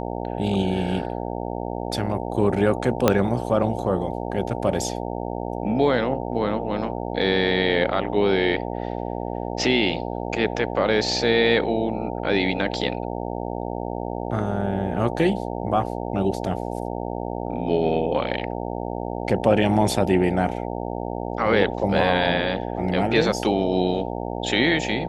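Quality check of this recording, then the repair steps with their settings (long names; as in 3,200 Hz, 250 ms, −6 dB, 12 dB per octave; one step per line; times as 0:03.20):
mains buzz 60 Hz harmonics 15 −29 dBFS
0:03.08: click −2 dBFS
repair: click removal
hum removal 60 Hz, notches 15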